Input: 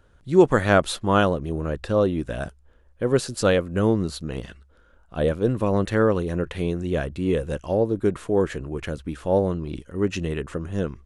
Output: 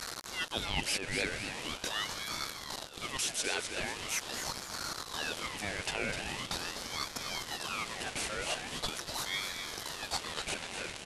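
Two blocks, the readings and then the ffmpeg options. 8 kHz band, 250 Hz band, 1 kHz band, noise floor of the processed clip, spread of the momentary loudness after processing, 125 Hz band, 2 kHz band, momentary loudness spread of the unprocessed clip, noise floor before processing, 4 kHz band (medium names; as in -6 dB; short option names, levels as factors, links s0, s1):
+3.5 dB, -22.0 dB, -11.0 dB, -46 dBFS, 5 LU, -21.5 dB, -4.5 dB, 11 LU, -56 dBFS, +2.5 dB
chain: -af "aeval=exprs='val(0)+0.5*0.0596*sgn(val(0))':c=same,highpass=1300,areverse,acompressor=threshold=0.0447:ratio=6,areverse,aecho=1:1:252|504|756|1008|1260:0.422|0.173|0.0709|0.0291|0.0119,aresample=22050,aresample=44100,aeval=exprs='val(0)*sin(2*PI*1900*n/s+1900*0.5/0.42*sin(2*PI*0.42*n/s))':c=same"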